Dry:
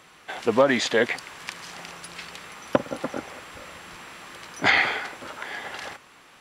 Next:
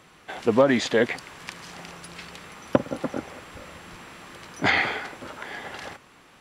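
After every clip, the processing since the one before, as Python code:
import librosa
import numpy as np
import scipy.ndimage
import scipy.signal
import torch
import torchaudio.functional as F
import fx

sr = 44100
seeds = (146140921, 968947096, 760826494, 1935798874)

y = fx.low_shelf(x, sr, hz=450.0, db=8.0)
y = F.gain(torch.from_numpy(y), -3.0).numpy()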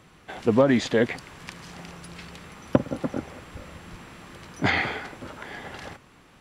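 y = fx.low_shelf(x, sr, hz=240.0, db=10.0)
y = F.gain(torch.from_numpy(y), -3.0).numpy()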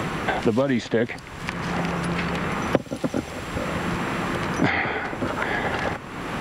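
y = fx.band_squash(x, sr, depth_pct=100)
y = F.gain(torch.from_numpy(y), 4.0).numpy()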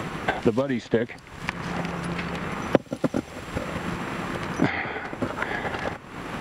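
y = fx.transient(x, sr, attack_db=7, sustain_db=-2)
y = F.gain(torch.from_numpy(y), -5.0).numpy()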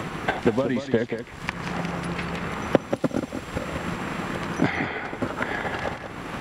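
y = x + 10.0 ** (-8.0 / 20.0) * np.pad(x, (int(184 * sr / 1000.0), 0))[:len(x)]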